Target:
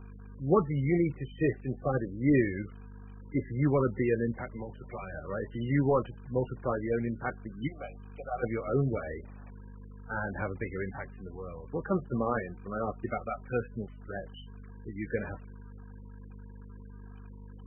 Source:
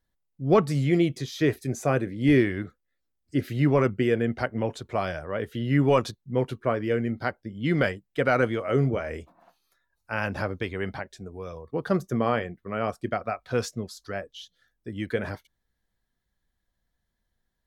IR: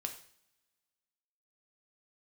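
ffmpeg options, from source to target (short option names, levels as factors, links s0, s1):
-filter_complex "[0:a]asettb=1/sr,asplit=3[s0][s1][s2];[s0]atrim=end=4.414[s3];[s1]atrim=start=4.41:end=5.14,asetpts=PTS-STARTPTS,afade=t=in:d=0.004:c=qsin,afade=t=out:st=0.726:d=0.004:c=qsin,acrossover=split=130|2000[s4][s5][s6];[s4]acompressor=threshold=0.00398:ratio=4[s7];[s5]acompressor=threshold=0.02:ratio=4[s8];[s6]acompressor=threshold=0.00794:ratio=4[s9];[s7][s8][s9]amix=inputs=3:normalize=0[s10];[s2]atrim=start=5.136[s11];[s3][s10]acrossfade=d=0.004:c1=hsin:c2=qsin[s12];[s12][s11]acrossfade=d=0.004:c1=qsin:c2=hsin,asplit=3[s13][s14][s15];[s13]afade=t=out:st=7.67:d=0.02[s16];[s14]asplit=3[s17][s18][s19];[s17]bandpass=f=730:t=q:w=8,volume=1[s20];[s18]bandpass=f=1090:t=q:w=8,volume=0.501[s21];[s19]bandpass=f=2440:t=q:w=8,volume=0.355[s22];[s20][s21][s22]amix=inputs=3:normalize=0,afade=t=in:st=7.67:d=0.02,afade=t=out:st=8.42:d=0.02[s23];[s15]afade=t=in:st=8.42:d=0.02[s24];[s16][s23][s24]amix=inputs=3:normalize=0,asettb=1/sr,asplit=3[s25][s26][s27];[s25]atrim=end=10.564[s28];[s26]atrim=start=10.56:end=11.49,asetpts=PTS-STARTPTS,afade=t=in:d=0.004:c=qsin,afade=t=out:st=0.926:d=0.004:c=qsin,aemphasis=mode=reproduction:type=50kf[s29];[s27]atrim=start=11.486[s30];[s28][s29]acrossfade=d=0.004:c1=hsin:c2=qsin[s31];[s31][s30]acrossfade=d=0.004:c1=qsin:c2=hsin,aeval=exprs='val(0)+0.00891*(sin(2*PI*50*n/s)+sin(2*PI*2*50*n/s)/2+sin(2*PI*3*50*n/s)/3+sin(2*PI*4*50*n/s)/4+sin(2*PI*5*50*n/s)/5)':c=same,acrusher=bits=7:mix=0:aa=0.000001,bandreject=f=660:w=12,asplit=2[s32][s33];[1:a]atrim=start_sample=2205,asetrate=61740,aresample=44100[s34];[s33][s34]afir=irnorm=-1:irlink=0,volume=0.133[s35];[s32][s35]amix=inputs=2:normalize=0,volume=0.562" -ar 22050 -c:a libmp3lame -b:a 8k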